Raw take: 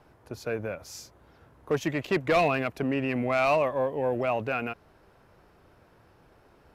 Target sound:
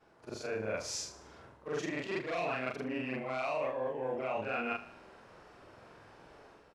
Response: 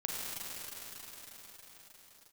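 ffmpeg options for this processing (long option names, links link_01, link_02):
-filter_complex "[0:a]afftfilt=real='re':imag='-im':win_size=4096:overlap=0.75,lowpass=frequency=9100:width=0.5412,lowpass=frequency=9100:width=1.3066,areverse,acompressor=threshold=-40dB:ratio=16,areverse,lowshelf=frequency=170:gain=-11.5,dynaudnorm=framelen=100:gausssize=7:maxgain=9.5dB,asplit=2[link_01][link_02];[link_02]aecho=0:1:75|150|225|300|375:0.168|0.0839|0.042|0.021|0.0105[link_03];[link_01][link_03]amix=inputs=2:normalize=0"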